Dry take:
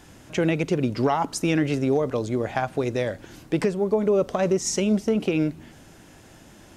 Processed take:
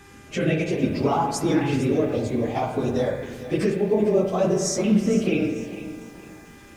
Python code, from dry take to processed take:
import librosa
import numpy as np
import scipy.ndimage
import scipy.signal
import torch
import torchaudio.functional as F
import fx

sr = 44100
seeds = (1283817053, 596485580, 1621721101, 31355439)

y = fx.phase_scramble(x, sr, seeds[0], window_ms=50)
y = fx.rev_spring(y, sr, rt60_s=1.3, pass_ms=(38, 51), chirp_ms=30, drr_db=4.5)
y = fx.filter_lfo_notch(y, sr, shape='saw_up', hz=0.62, low_hz=590.0, high_hz=3000.0, q=1.6)
y = fx.dmg_buzz(y, sr, base_hz=400.0, harmonics=6, level_db=-53.0, tilt_db=-1, odd_only=False)
y = fx.echo_crushed(y, sr, ms=453, feedback_pct=35, bits=8, wet_db=-13.5)